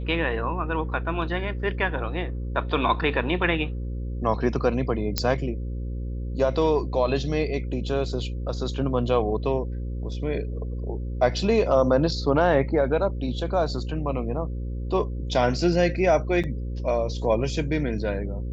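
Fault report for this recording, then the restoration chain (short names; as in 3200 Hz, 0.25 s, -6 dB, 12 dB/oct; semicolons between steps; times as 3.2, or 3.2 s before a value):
buzz 60 Hz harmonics 9 -30 dBFS
5.18 pop -6 dBFS
16.43–16.44 gap 6.9 ms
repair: de-click; de-hum 60 Hz, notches 9; interpolate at 16.43, 6.9 ms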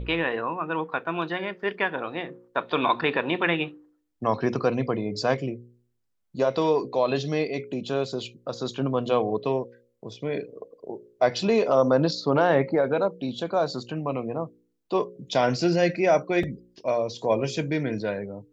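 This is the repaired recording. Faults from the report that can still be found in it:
none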